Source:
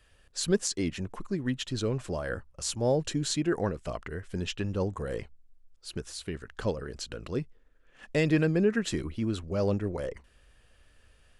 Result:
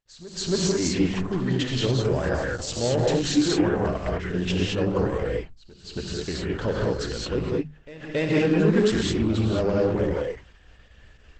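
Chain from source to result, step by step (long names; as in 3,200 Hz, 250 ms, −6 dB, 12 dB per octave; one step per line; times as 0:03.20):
high-frequency loss of the air 65 metres
in parallel at +0.5 dB: brickwall limiter −22.5 dBFS, peak gain reduction 9.5 dB
on the sum: soft clipping −16.5 dBFS, distortion −17 dB
mains-hum notches 50/100/150/200/250 Hz
reverb whose tail is shaped and stops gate 240 ms rising, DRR −3 dB
noise gate −49 dBFS, range −48 dB
on a send: backwards echo 276 ms −17 dB
on the sum: Opus 12 kbit/s 48,000 Hz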